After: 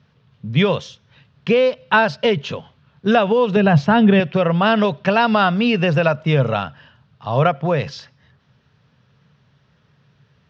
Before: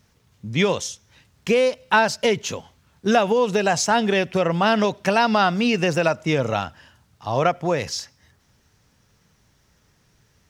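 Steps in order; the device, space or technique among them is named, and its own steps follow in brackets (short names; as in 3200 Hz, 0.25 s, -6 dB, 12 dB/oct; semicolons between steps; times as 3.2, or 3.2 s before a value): 3.56–4.2 tone controls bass +12 dB, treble -9 dB; guitar cabinet (speaker cabinet 100–3800 Hz, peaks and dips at 140 Hz +9 dB, 320 Hz -8 dB, 810 Hz -4 dB, 2100 Hz -5 dB); gain +4 dB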